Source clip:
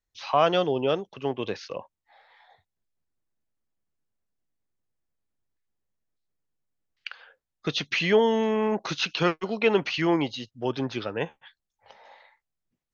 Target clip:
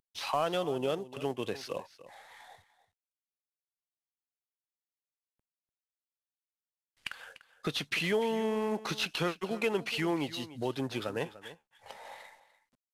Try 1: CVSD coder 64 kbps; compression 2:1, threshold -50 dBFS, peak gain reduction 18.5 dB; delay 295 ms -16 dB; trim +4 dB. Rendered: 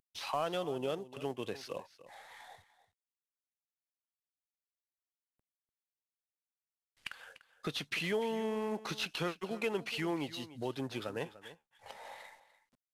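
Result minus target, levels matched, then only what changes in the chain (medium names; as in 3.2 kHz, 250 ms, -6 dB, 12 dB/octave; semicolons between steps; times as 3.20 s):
compression: peak gain reduction +4 dB
change: compression 2:1, threshold -41.5 dBFS, peak gain reduction 14 dB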